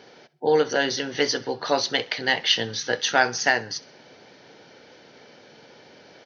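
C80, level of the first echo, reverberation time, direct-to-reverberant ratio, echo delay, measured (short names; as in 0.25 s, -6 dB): none, -21.5 dB, none, none, 65 ms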